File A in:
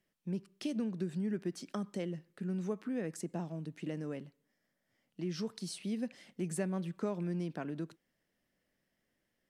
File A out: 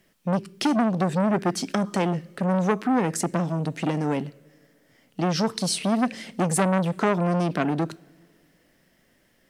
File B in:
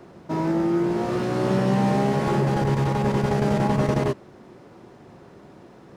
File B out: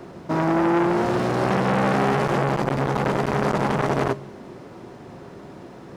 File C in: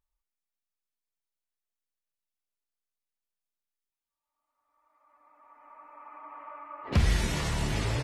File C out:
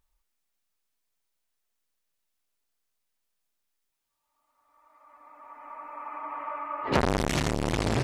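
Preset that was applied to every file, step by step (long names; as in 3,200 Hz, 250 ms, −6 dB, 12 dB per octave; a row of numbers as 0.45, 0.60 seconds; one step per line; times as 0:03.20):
coupled-rooms reverb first 0.25 s, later 2.2 s, from −18 dB, DRR 17 dB
saturating transformer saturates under 1,100 Hz
normalise the peak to −6 dBFS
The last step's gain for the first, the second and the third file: +17.5, +6.0, +9.5 decibels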